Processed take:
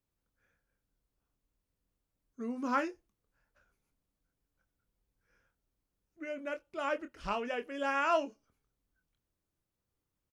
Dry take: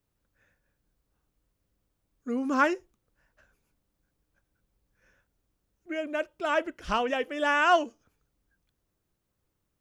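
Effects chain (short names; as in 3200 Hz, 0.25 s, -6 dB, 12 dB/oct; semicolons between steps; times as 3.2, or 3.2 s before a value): doubler 24 ms -9.5 dB; varispeed -5%; gain -8 dB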